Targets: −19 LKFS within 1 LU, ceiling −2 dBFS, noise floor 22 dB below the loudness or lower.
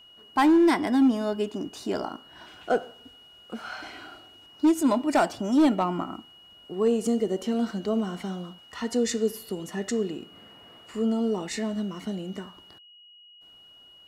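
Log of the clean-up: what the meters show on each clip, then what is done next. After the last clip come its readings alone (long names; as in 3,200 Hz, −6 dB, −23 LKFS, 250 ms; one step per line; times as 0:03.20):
share of clipped samples 0.9%; peaks flattened at −15.0 dBFS; interfering tone 2,900 Hz; level of the tone −50 dBFS; integrated loudness −26.0 LKFS; sample peak −15.0 dBFS; target loudness −19.0 LKFS
→ clipped peaks rebuilt −15 dBFS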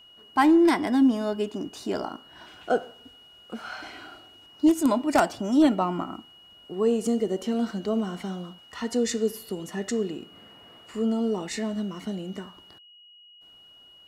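share of clipped samples 0.0%; interfering tone 2,900 Hz; level of the tone −50 dBFS
→ notch filter 2,900 Hz, Q 30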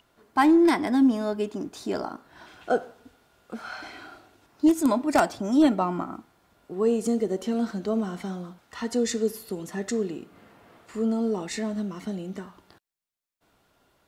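interfering tone none found; integrated loudness −25.5 LKFS; sample peak −6.0 dBFS; target loudness −19.0 LKFS
→ level +6.5 dB
brickwall limiter −2 dBFS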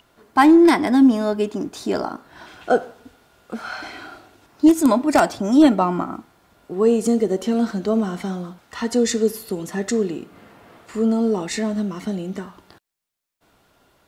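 integrated loudness −19.0 LKFS; sample peak −2.0 dBFS; background noise floor −60 dBFS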